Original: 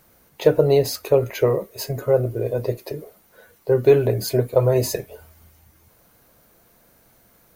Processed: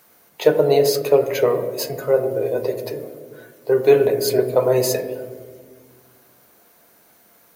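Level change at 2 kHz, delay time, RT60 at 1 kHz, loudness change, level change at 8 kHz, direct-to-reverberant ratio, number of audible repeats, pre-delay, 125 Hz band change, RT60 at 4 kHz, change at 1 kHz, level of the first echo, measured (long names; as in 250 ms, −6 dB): +4.0 dB, no echo audible, 1.3 s, +1.5 dB, +3.5 dB, 7.0 dB, no echo audible, 3 ms, −7.0 dB, 0.90 s, +4.0 dB, no echo audible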